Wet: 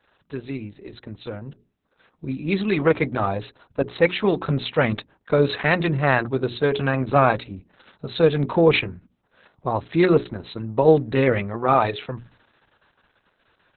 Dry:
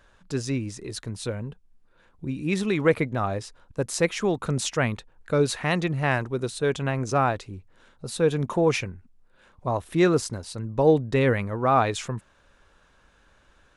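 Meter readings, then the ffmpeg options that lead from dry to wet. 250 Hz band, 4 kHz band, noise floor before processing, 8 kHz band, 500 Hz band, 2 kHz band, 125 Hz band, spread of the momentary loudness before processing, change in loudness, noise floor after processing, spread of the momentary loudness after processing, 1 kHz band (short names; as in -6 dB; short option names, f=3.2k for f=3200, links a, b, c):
+3.0 dB, +3.0 dB, -60 dBFS, under -40 dB, +4.0 dB, +4.5 dB, +2.0 dB, 14 LU, +4.0 dB, -69 dBFS, 18 LU, +3.5 dB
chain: -af "highpass=100,bandreject=f=60:t=h:w=6,bandreject=f=120:t=h:w=6,bandreject=f=180:t=h:w=6,bandreject=f=240:t=h:w=6,bandreject=f=300:t=h:w=6,bandreject=f=360:t=h:w=6,bandreject=f=420:t=h:w=6,dynaudnorm=f=250:g=17:m=11.5dB,aexciter=amount=1.3:drive=6.9:freq=5.6k,volume=-1dB" -ar 48000 -c:a libopus -b:a 6k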